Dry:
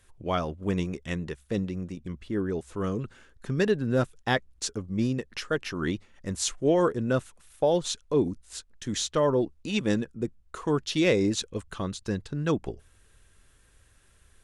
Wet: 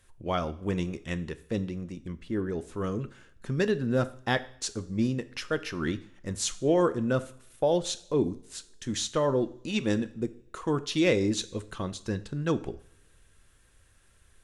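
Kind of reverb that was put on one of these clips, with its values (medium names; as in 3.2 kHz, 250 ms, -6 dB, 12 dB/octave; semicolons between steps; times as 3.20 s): two-slope reverb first 0.54 s, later 2 s, from -26 dB, DRR 11.5 dB; trim -1.5 dB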